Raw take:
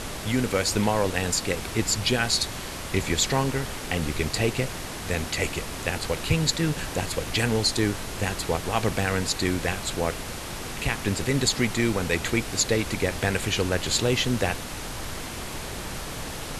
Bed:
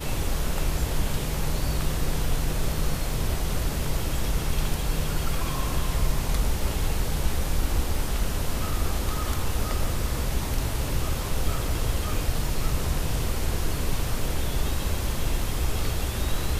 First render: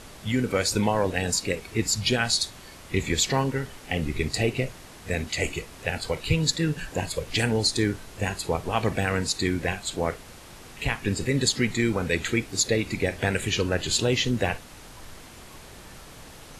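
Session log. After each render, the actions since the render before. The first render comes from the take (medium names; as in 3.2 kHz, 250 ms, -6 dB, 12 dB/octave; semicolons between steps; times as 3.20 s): noise print and reduce 11 dB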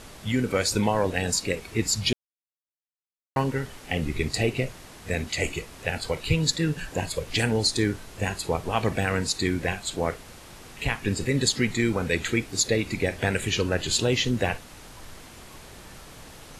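2.13–3.36 s: mute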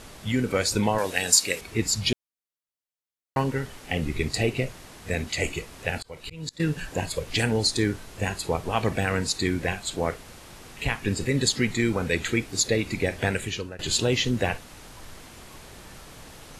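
0.98–1.61 s: tilt EQ +3 dB/octave; 5.98–6.60 s: slow attack 419 ms; 13.27–13.79 s: fade out, to -20.5 dB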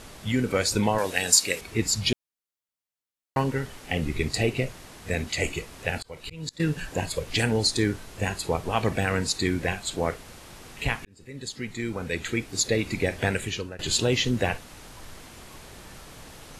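11.05–12.86 s: fade in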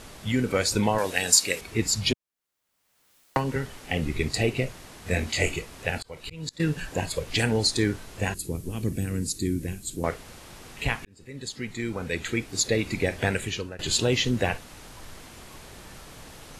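2.11–3.56 s: three bands compressed up and down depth 100%; 5.04–5.56 s: doubling 22 ms -3 dB; 8.34–10.04 s: FFT filter 330 Hz 0 dB, 740 Hz -22 dB, 3.7 kHz -11 dB, 11 kHz +5 dB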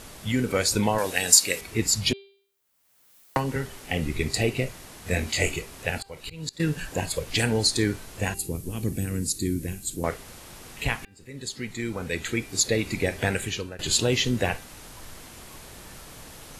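treble shelf 9.5 kHz +8.5 dB; de-hum 395.1 Hz, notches 12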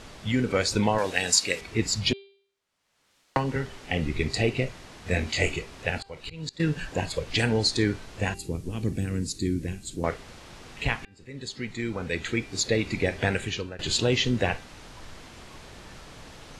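low-pass 5.4 kHz 12 dB/octave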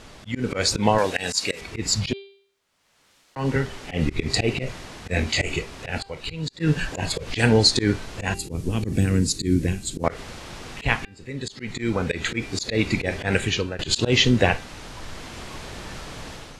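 level rider gain up to 9 dB; slow attack 110 ms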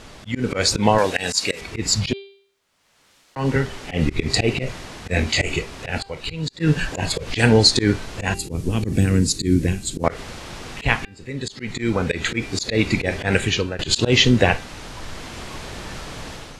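trim +3 dB; peak limiter -1 dBFS, peak gain reduction 1.5 dB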